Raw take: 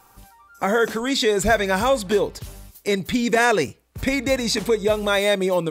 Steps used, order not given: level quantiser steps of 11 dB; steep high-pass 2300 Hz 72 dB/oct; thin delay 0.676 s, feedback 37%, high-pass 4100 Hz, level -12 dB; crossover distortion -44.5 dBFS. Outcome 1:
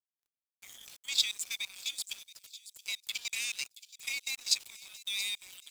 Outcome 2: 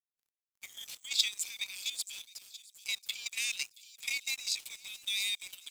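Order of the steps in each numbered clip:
steep high-pass > level quantiser > crossover distortion > thin delay; steep high-pass > crossover distortion > thin delay > level quantiser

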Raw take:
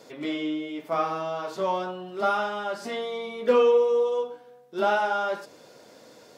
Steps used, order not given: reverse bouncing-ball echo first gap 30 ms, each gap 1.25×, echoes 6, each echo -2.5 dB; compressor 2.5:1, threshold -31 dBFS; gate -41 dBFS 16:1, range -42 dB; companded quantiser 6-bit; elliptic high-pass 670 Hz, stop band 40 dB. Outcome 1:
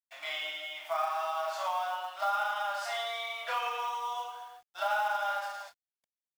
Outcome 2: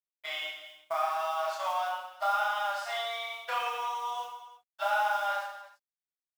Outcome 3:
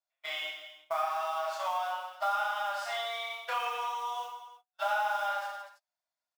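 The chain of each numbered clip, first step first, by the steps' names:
reverse bouncing-ball echo > gate > elliptic high-pass > companded quantiser > compressor; elliptic high-pass > compressor > gate > companded quantiser > reverse bouncing-ball echo; elliptic high-pass > companded quantiser > gate > reverse bouncing-ball echo > compressor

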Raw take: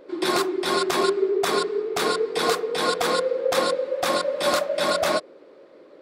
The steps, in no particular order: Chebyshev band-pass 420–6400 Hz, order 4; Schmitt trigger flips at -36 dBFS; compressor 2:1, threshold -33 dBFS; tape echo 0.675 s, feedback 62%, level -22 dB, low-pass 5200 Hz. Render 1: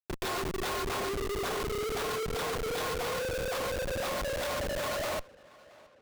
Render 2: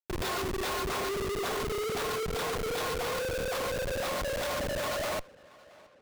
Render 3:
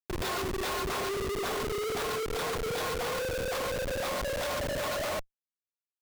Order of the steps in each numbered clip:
compressor > Chebyshev band-pass > Schmitt trigger > tape echo; Chebyshev band-pass > compressor > Schmitt trigger > tape echo; Chebyshev band-pass > tape echo > compressor > Schmitt trigger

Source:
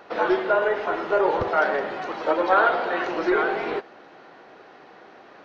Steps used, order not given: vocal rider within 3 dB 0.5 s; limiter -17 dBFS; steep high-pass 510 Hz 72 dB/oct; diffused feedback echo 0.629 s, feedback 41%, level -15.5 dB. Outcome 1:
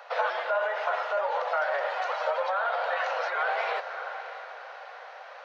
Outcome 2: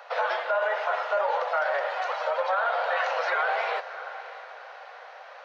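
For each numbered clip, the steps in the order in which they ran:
diffused feedback echo > limiter > steep high-pass > vocal rider; steep high-pass > vocal rider > diffused feedback echo > limiter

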